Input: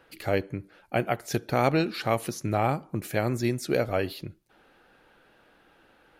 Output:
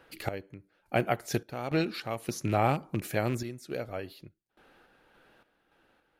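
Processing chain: rattling part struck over -30 dBFS, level -30 dBFS; random-step tremolo 3.5 Hz, depth 90%

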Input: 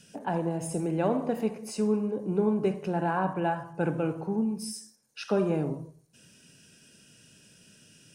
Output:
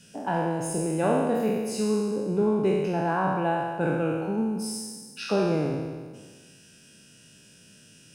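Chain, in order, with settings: spectral trails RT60 1.55 s

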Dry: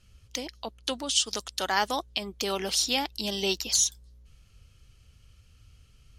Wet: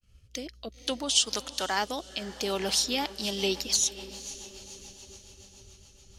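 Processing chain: expander -53 dBFS; diffused feedback echo 0.505 s, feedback 57%, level -15 dB; rotary speaker horn 0.6 Hz, later 7 Hz, at 2.52; gain +1.5 dB

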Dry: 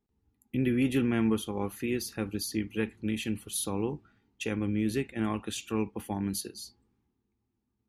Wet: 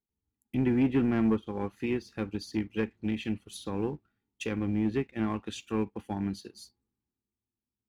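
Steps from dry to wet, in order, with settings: treble ducked by the level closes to 1900 Hz, closed at -24.5 dBFS; sample leveller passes 1; upward expander 1.5:1, over -44 dBFS

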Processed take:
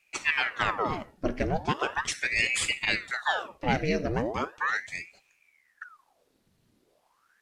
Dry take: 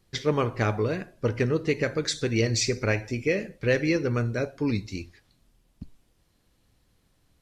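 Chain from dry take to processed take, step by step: ring modulator with a swept carrier 1300 Hz, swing 90%, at 0.38 Hz

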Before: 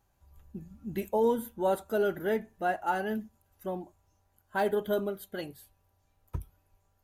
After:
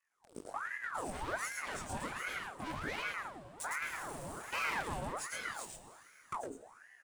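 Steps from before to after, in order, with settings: inharmonic rescaling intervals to 90%; bell 8000 Hz +4 dB; sample leveller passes 5; compressor 16:1, threshold -39 dBFS, peak gain reduction 20.5 dB; chorus 2.2 Hz, delay 20 ms, depth 4.9 ms; Schroeder reverb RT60 3.5 s, combs from 32 ms, DRR 11.5 dB; 3.82–4.83 power-law curve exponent 0.5; LFO notch square 3.3 Hz 480–1600 Hz; on a send: echo 0.11 s -3.5 dB; on the sum: ring modulator with a swept carrier 1100 Hz, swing 70%, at 1.3 Hz; gain +6 dB

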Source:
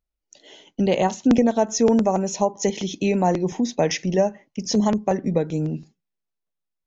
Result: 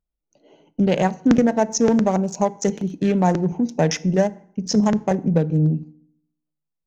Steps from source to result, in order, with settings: Wiener smoothing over 25 samples; fifteen-band EQ 160 Hz +7 dB, 1600 Hz +7 dB, 6300 Hz +4 dB; FDN reverb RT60 0.67 s, low-frequency decay 1.2×, high-frequency decay 0.7×, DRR 16 dB

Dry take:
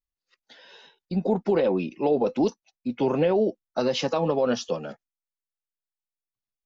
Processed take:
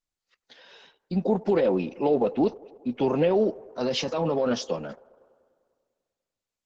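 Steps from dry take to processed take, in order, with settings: 2.14–2.91 LPF 3700 Hz 24 dB/oct; 3.43–4.54 transient shaper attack -8 dB, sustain +2 dB; band-limited delay 99 ms, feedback 70%, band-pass 690 Hz, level -21 dB; Opus 12 kbps 48000 Hz

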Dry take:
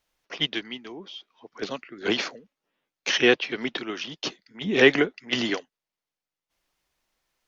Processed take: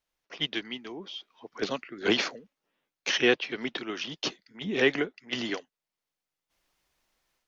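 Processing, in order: AGC gain up to 10 dB; gain -8.5 dB

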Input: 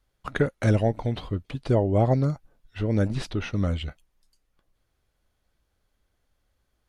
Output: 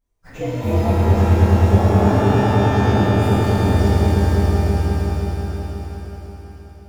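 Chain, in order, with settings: inharmonic rescaling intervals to 123%; bell 2500 Hz -7 dB 1.9 oct; on a send: swelling echo 0.106 s, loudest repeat 5, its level -6.5 dB; on the sum: shimmer reverb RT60 2.3 s, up +12 st, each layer -8 dB, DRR -8.5 dB; gain -3.5 dB

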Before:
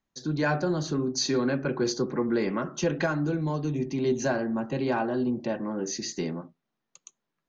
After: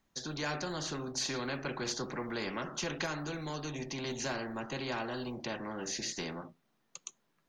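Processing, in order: spectral compressor 2:1; gain -5 dB

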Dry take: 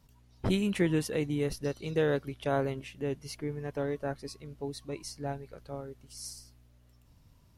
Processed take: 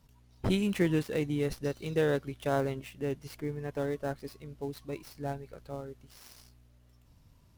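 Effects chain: switching dead time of 0.073 ms

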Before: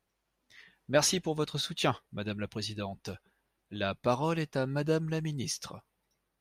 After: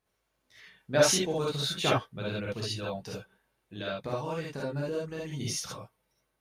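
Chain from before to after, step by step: 3.02–5.37 compressor 4:1, threshold -34 dBFS, peak gain reduction 10.5 dB; non-linear reverb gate 90 ms rising, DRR -5 dB; gain -3 dB

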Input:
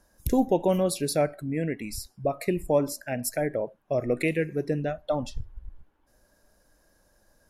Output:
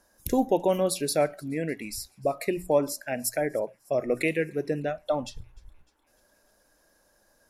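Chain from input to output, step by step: low shelf 190 Hz -10 dB; notches 60/120/180 Hz; on a send: thin delay 0.302 s, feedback 64%, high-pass 3600 Hz, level -24 dB; on the sum: gain +1.5 dB

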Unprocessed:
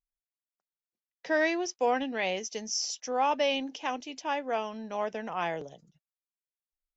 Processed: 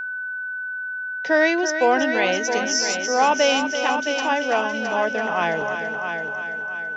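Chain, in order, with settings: multi-head echo 0.333 s, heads first and second, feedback 45%, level -9.5 dB; whine 1500 Hz -35 dBFS; gain +8.5 dB

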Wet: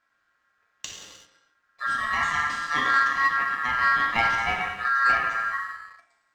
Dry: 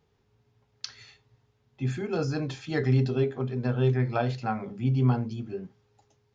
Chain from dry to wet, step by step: non-linear reverb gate 0.42 s falling, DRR -1.5 dB; ring modulator 1500 Hz; sample leveller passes 1

